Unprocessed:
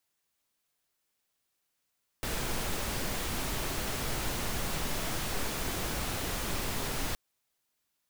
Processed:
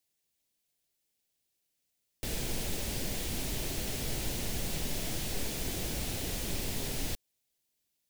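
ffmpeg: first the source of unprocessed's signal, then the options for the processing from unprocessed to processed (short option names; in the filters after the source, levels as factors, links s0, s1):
-f lavfi -i "anoisesrc=c=pink:a=0.115:d=4.92:r=44100:seed=1"
-af "equalizer=f=1200:w=1.2:g=-13"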